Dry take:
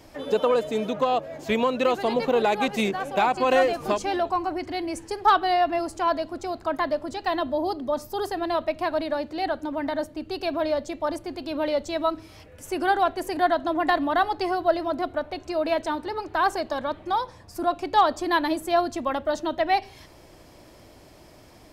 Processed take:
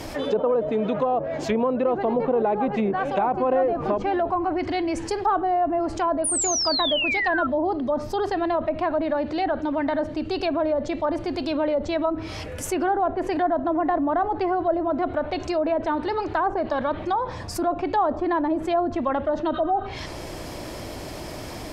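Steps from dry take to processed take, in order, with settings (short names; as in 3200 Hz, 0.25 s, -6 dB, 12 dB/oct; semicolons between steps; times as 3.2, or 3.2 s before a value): spectral repair 19.57–19.83, 1100–10000 Hz before; treble ducked by the level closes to 910 Hz, closed at -20 dBFS; painted sound fall, 6.24–7.47, 1300–10000 Hz -28 dBFS; fast leveller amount 50%; gain -1.5 dB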